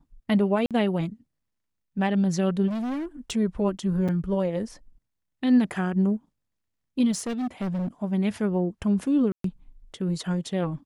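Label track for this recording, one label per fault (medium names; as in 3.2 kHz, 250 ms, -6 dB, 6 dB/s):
0.660000	0.710000	dropout 47 ms
2.670000	3.320000	clipped -27 dBFS
4.080000	4.090000	dropout 5.8 ms
7.110000	7.880000	clipped -25.5 dBFS
9.320000	9.440000	dropout 123 ms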